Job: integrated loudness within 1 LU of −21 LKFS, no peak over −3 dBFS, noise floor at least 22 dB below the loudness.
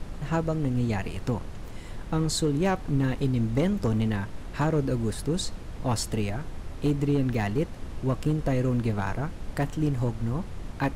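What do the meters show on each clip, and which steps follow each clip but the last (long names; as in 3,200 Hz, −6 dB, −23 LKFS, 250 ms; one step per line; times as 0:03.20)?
share of clipped samples 0.6%; peaks flattened at −17.0 dBFS; background noise floor −39 dBFS; target noise floor −50 dBFS; integrated loudness −28.0 LKFS; sample peak −17.0 dBFS; target loudness −21.0 LKFS
→ clipped peaks rebuilt −17 dBFS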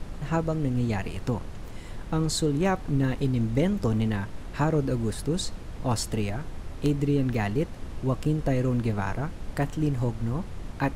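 share of clipped samples 0.0%; background noise floor −39 dBFS; target noise floor −50 dBFS
→ noise reduction from a noise print 11 dB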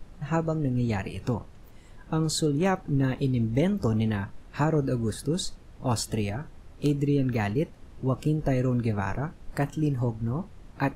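background noise floor −49 dBFS; target noise floor −50 dBFS
→ noise reduction from a noise print 6 dB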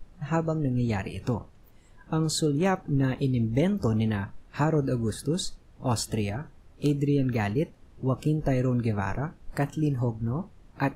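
background noise floor −54 dBFS; integrated loudness −28.0 LKFS; sample peak −11.5 dBFS; target loudness −21.0 LKFS
→ level +7 dB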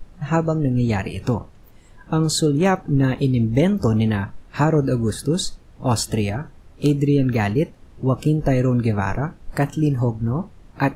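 integrated loudness −21.0 LKFS; sample peak −4.5 dBFS; background noise floor −47 dBFS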